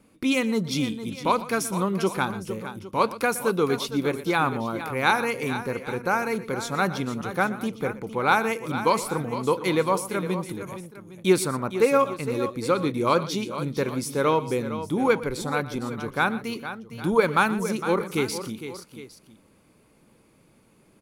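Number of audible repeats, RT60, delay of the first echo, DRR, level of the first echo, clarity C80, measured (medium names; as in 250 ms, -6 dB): 3, no reverb, 120 ms, no reverb, -16.5 dB, no reverb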